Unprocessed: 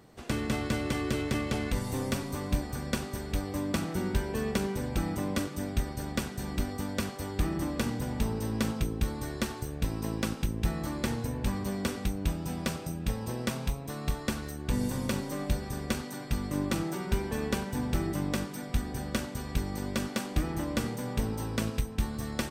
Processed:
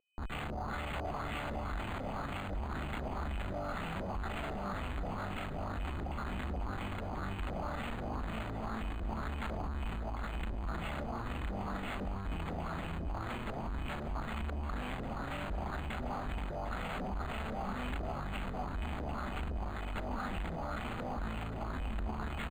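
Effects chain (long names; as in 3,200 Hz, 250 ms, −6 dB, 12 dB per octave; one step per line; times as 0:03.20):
lower of the sound and its delayed copy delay 1.5 ms
mains-hum notches 60/120/180 Hz
comparator with hysteresis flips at −42 dBFS
brickwall limiter −36.5 dBFS, peak gain reduction 8.5 dB
octave-band graphic EQ 125/500/2,000/8,000 Hz −11/−12/−6/−5 dB
steady tone 2,500 Hz −62 dBFS
auto-filter low-pass saw up 2 Hz 490–5,600 Hz
on a send: single-tap delay 752 ms −11.5 dB
on the sum: linearly interpolated sample-rate reduction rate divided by 8×
level +5 dB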